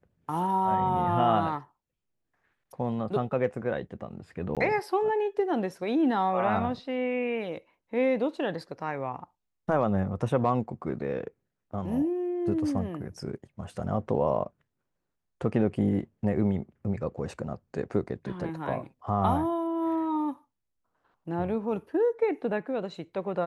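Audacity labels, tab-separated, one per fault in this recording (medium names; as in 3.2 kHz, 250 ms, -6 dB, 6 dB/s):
4.550000	4.570000	dropout 17 ms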